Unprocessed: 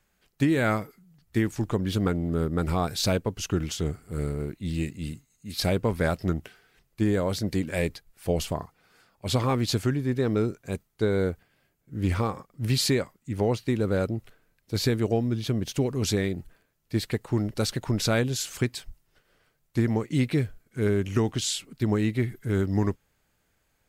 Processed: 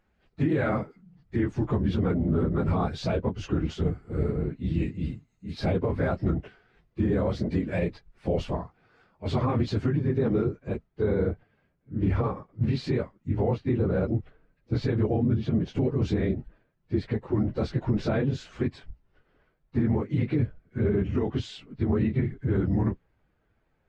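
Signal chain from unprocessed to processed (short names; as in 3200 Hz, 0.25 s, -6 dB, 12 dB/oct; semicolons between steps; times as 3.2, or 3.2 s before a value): phase scrambler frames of 50 ms; limiter -18.5 dBFS, peak gain reduction 7.5 dB; tape spacing loss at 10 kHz 31 dB, from 10.43 s at 10 kHz 38 dB; gain +3.5 dB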